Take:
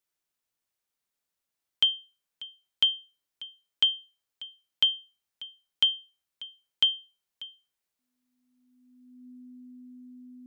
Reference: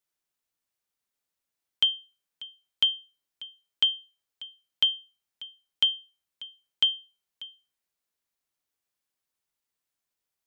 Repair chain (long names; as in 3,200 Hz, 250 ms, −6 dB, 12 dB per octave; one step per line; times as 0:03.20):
notch filter 250 Hz, Q 30